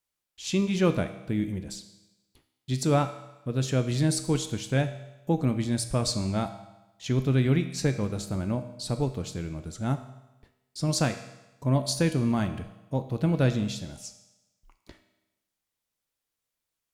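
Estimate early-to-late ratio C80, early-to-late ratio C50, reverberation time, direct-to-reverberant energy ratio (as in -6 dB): 13.0 dB, 11.0 dB, 1.0 s, 8.0 dB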